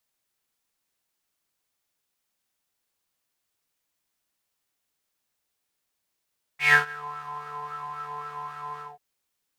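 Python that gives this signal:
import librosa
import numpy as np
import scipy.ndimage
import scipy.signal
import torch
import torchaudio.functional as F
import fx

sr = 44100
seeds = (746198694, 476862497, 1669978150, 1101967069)

y = fx.sub_patch_wobble(sr, seeds[0], note=50, wave='square', wave2='saw', interval_st=19, level2_db=-8.0, sub_db=-15.0, noise_db=-6, kind='bandpass', cutoff_hz=780.0, q=9.3, env_oct=1.5, env_decay_s=0.48, env_sustain_pct=35, attack_ms=142.0, decay_s=0.12, sustain_db=-23.0, release_s=0.19, note_s=2.2, lfo_hz=3.7, wobble_oct=0.2)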